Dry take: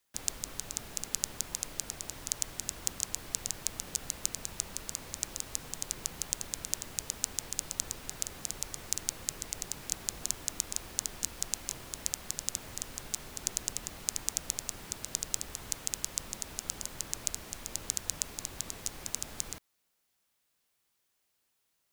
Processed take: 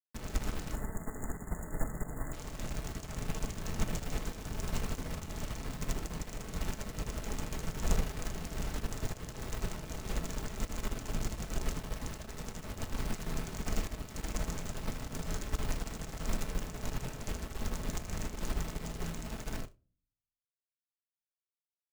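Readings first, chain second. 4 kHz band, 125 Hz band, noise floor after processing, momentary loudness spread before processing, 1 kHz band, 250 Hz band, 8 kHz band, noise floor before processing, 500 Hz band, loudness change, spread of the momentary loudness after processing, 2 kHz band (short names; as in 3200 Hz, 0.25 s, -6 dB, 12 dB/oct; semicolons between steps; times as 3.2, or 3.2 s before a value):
-7.0 dB, +11.5 dB, under -85 dBFS, 5 LU, +4.5 dB, +10.0 dB, -13.0 dB, -78 dBFS, +7.0 dB, -4.0 dB, 4 LU, +2.0 dB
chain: HPF 76 Hz 6 dB/oct; reverb removal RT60 0.68 s; tilt -4 dB/oct; on a send: feedback echo 78 ms, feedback 48%, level -6 dB; on the sum: soft clip -27.5 dBFS, distortion -16 dB; bit-crush 7-bit; spectral delete 0.72–2.33, 2100–6700 Hz; shoebox room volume 570 m³, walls furnished, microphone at 1.5 m; upward expander 2.5:1, over -49 dBFS; gain +8.5 dB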